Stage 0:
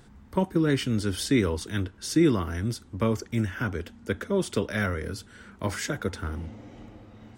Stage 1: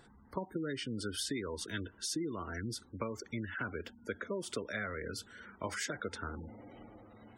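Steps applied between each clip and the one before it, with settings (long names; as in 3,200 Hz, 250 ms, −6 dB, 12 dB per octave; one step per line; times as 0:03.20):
low-shelf EQ 260 Hz −11.5 dB
downward compressor 12 to 1, threshold −32 dBFS, peak gain reduction 12 dB
gate on every frequency bin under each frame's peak −20 dB strong
level −1.5 dB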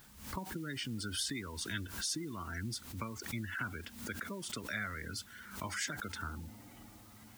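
parametric band 480 Hz −14 dB 1.1 octaves
background noise white −63 dBFS
background raised ahead of every attack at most 89 dB per second
level +1.5 dB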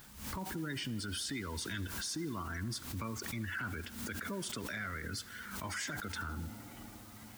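leveller curve on the samples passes 1
brickwall limiter −32.5 dBFS, peak gain reduction 8 dB
tape delay 81 ms, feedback 89%, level −18 dB, low-pass 5,500 Hz
level +1 dB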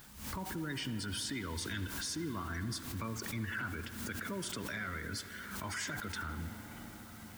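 convolution reverb RT60 5.6 s, pre-delay 60 ms, DRR 10 dB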